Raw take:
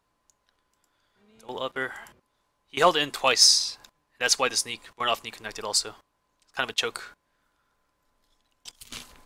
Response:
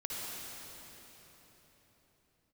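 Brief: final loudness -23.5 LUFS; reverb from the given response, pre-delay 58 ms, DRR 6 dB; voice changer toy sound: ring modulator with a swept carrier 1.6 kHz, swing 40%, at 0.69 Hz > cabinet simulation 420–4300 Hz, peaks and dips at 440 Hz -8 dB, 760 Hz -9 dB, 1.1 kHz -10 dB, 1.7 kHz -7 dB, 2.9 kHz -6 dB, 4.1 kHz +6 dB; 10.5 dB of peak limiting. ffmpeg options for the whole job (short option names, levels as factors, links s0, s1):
-filter_complex "[0:a]alimiter=limit=0.126:level=0:latency=1,asplit=2[s0][s1];[1:a]atrim=start_sample=2205,adelay=58[s2];[s1][s2]afir=irnorm=-1:irlink=0,volume=0.355[s3];[s0][s3]amix=inputs=2:normalize=0,aeval=exprs='val(0)*sin(2*PI*1600*n/s+1600*0.4/0.69*sin(2*PI*0.69*n/s))':c=same,highpass=420,equalizer=f=440:t=q:w=4:g=-8,equalizer=f=760:t=q:w=4:g=-9,equalizer=f=1100:t=q:w=4:g=-10,equalizer=f=1700:t=q:w=4:g=-7,equalizer=f=2900:t=q:w=4:g=-6,equalizer=f=4100:t=q:w=4:g=6,lowpass=f=4300:w=0.5412,lowpass=f=4300:w=1.3066,volume=4.47"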